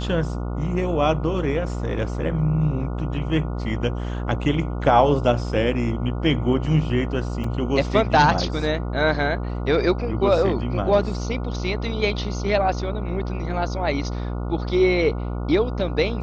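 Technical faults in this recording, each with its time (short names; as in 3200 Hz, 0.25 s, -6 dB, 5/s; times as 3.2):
buzz 60 Hz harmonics 24 -27 dBFS
7.44 gap 3.5 ms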